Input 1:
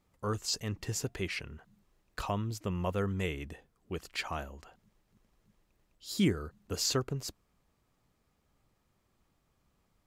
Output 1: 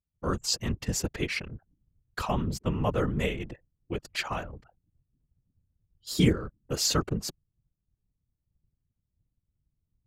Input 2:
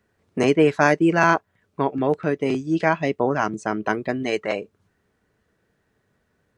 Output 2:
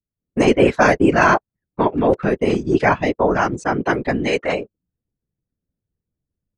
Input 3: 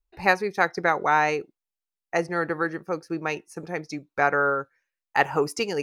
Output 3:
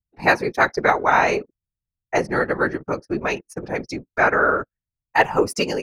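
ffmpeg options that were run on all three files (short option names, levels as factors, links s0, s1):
-af "anlmdn=0.0251,afftfilt=real='hypot(re,im)*cos(2*PI*random(0))':imag='hypot(re,im)*sin(2*PI*random(1))':win_size=512:overlap=0.75,dynaudnorm=f=160:g=3:m=2.99,volume=1.19"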